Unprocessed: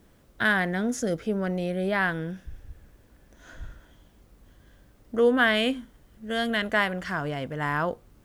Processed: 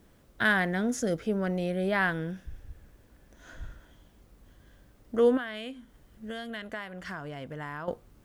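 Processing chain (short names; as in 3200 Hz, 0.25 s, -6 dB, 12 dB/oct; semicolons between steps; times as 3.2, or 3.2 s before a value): 5.37–7.88 compressor 6:1, threshold -34 dBFS, peak gain reduction 16 dB; gain -1.5 dB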